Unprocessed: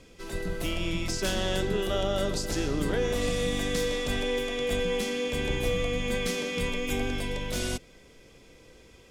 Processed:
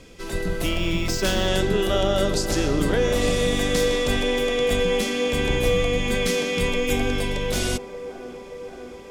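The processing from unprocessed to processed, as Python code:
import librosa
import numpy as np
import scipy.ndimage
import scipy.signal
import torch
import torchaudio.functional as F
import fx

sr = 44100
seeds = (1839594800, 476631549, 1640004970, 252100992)

y = fx.echo_wet_bandpass(x, sr, ms=577, feedback_pct=77, hz=630.0, wet_db=-12)
y = fx.resample_linear(y, sr, factor=2, at=(0.69, 1.48))
y = y * librosa.db_to_amplitude(6.5)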